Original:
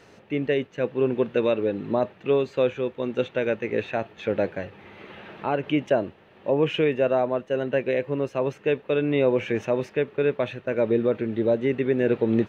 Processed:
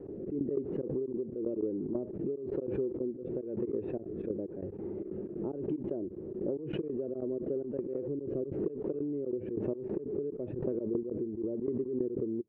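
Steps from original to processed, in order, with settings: jump at every zero crossing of -36 dBFS; trance gate ".xx..x.xxx.xx" 185 bpm -24 dB; resonant low-pass 360 Hz, resonance Q 3.9; compression 10:1, threshold -27 dBFS, peak gain reduction 18 dB; rotary cabinet horn 1 Hz; swell ahead of each attack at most 50 dB/s; trim -3 dB

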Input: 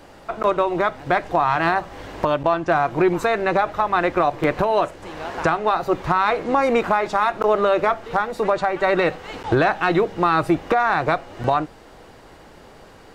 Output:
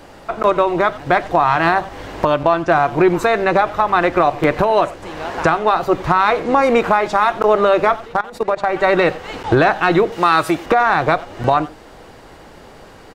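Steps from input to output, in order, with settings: 7.96–8.69 s: level held to a coarse grid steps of 20 dB; 10.12–10.66 s: tilt EQ +2.5 dB/octave; speakerphone echo 90 ms, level -17 dB; trim +4.5 dB

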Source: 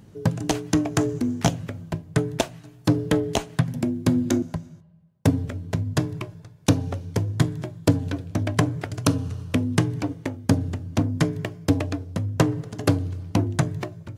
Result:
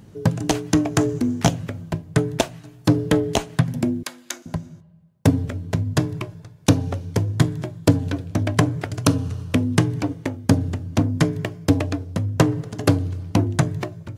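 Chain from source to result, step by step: 4.03–4.46 s: high-pass 1.3 kHz 12 dB/octave; trim +3 dB

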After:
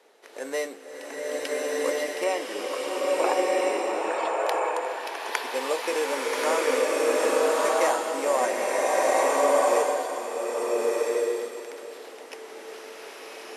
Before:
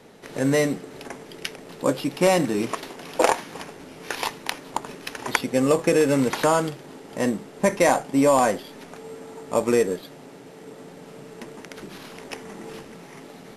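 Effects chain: high-pass 390 Hz 24 dB/octave; 2.24–4.41 s: loudest bins only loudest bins 64; swelling reverb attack 1360 ms, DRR -6.5 dB; trim -7 dB

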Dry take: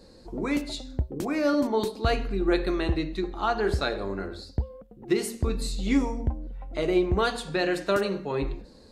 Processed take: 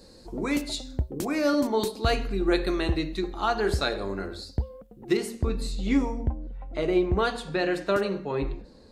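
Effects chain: treble shelf 4.6 kHz +7.5 dB, from 5.17 s -6 dB

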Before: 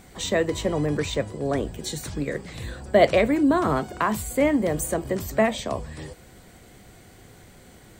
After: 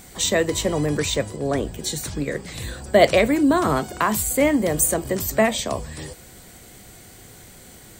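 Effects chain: treble shelf 4.3 kHz +11 dB, from 1.36 s +5.5 dB, from 2.45 s +10.5 dB; trim +2 dB

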